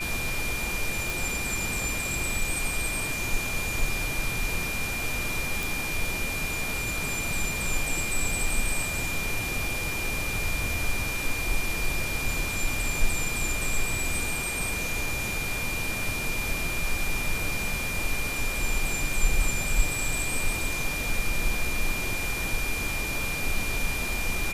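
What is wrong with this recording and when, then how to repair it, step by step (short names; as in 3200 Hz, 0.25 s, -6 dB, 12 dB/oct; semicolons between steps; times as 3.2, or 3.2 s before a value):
tone 2400 Hz -31 dBFS
1.1 pop
5.63 pop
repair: de-click; notch 2400 Hz, Q 30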